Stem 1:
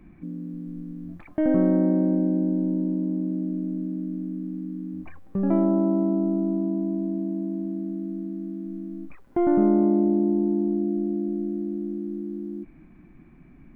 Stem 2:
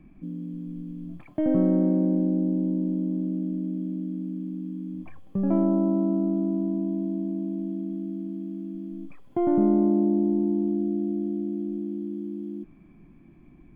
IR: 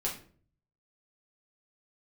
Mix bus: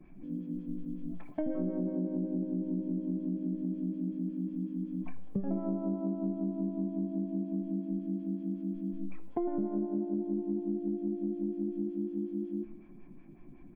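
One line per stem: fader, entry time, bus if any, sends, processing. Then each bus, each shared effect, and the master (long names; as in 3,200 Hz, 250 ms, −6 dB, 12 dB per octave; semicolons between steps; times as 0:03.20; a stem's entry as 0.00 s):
−6.5 dB, 0.00 s, no send, tuned comb filter 70 Hz, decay 1.7 s, harmonics all, mix 70%
−1.0 dB, 3.7 ms, send −10.5 dB, notch filter 1,200 Hz, Q 11; phaser with staggered stages 5.4 Hz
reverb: on, RT60 0.45 s, pre-delay 5 ms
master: downward compressor 6 to 1, threshold −30 dBFS, peak gain reduction 14.5 dB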